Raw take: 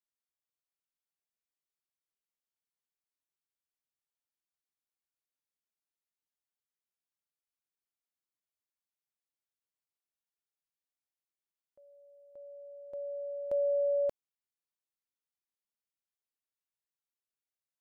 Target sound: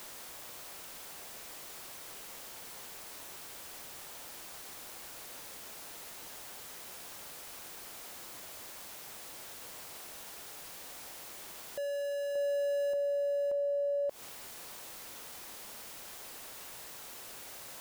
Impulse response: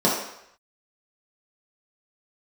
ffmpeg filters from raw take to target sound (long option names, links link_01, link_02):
-af "aeval=exprs='val(0)+0.5*0.00501*sgn(val(0))':channel_layout=same,equalizer=frequency=630:width=0.65:gain=6,alimiter=level_in=13dB:limit=-24dB:level=0:latency=1:release=136,volume=-13dB,volume=8.5dB"